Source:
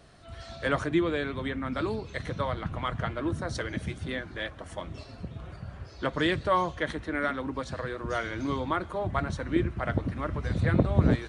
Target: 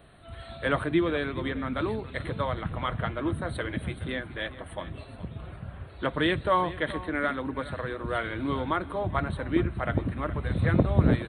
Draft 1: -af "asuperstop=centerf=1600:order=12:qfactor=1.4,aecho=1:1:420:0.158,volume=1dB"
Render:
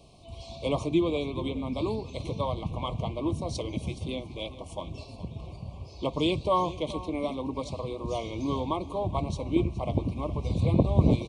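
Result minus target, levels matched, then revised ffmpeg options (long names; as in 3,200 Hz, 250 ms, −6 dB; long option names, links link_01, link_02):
2,000 Hz band −12.0 dB
-af "asuperstop=centerf=5900:order=12:qfactor=1.4,aecho=1:1:420:0.158,volume=1dB"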